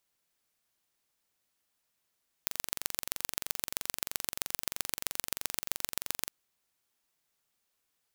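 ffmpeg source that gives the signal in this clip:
-f lavfi -i "aevalsrc='0.794*eq(mod(n,1909),0)*(0.5+0.5*eq(mod(n,5727),0))':d=3.81:s=44100"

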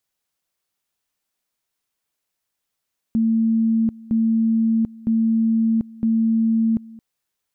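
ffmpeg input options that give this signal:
-f lavfi -i "aevalsrc='pow(10,(-15-22*gte(mod(t,0.96),0.74))/20)*sin(2*PI*225*t)':d=3.84:s=44100"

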